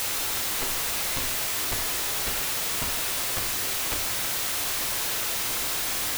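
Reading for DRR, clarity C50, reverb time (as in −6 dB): 2.5 dB, 7.0 dB, 0.80 s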